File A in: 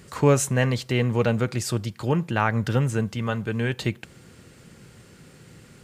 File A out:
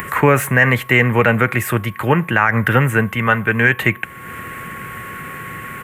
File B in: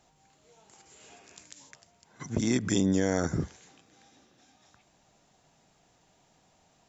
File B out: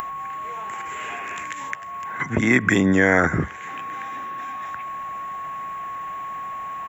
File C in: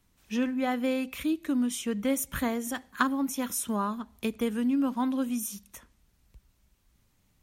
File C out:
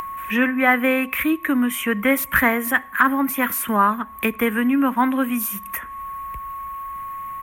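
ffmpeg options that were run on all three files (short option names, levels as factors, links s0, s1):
-filter_complex "[0:a]firequalizer=gain_entry='entry(510,0);entry(1900,13);entry(4600,-19);entry(12000,10)':delay=0.05:min_phase=1,acrossover=split=130|650|2900[s0][s1][s2][s3];[s3]asoftclip=type=tanh:threshold=0.0237[s4];[s0][s1][s2][s4]amix=inputs=4:normalize=0,lowshelf=f=370:g=-4,aeval=exprs='val(0)+0.00355*sin(2*PI*1100*n/s)':c=same,acompressor=mode=upward:threshold=0.0251:ratio=2.5,alimiter=level_in=3.55:limit=0.891:release=50:level=0:latency=1,volume=0.891"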